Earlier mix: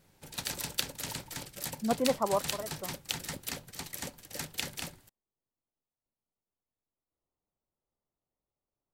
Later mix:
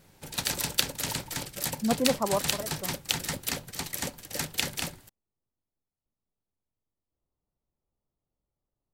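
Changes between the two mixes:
speech: add low shelf 210 Hz +10 dB; background +6.5 dB

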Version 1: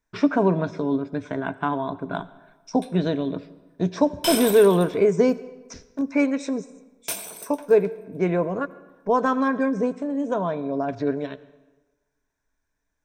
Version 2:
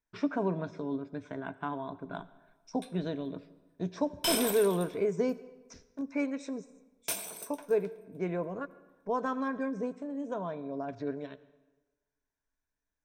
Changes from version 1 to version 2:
speech -11.0 dB; background -4.5 dB

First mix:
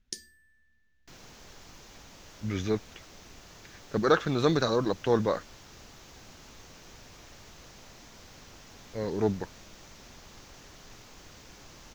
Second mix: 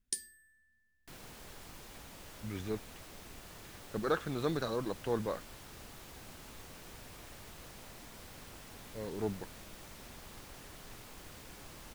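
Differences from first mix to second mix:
speech -9.0 dB; first sound: add low shelf 470 Hz -7.5 dB; master: add resonant high shelf 7600 Hz +7 dB, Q 3

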